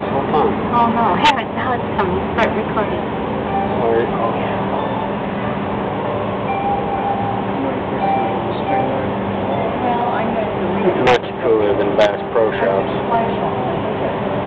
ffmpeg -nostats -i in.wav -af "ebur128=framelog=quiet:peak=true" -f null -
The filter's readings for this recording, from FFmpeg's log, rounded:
Integrated loudness:
  I:         -17.9 LUFS
  Threshold: -27.9 LUFS
Loudness range:
  LRA:         3.6 LU
  Threshold: -38.2 LUFS
  LRA low:   -20.0 LUFS
  LRA high:  -16.4 LUFS
True peak:
  Peak:       -4.3 dBFS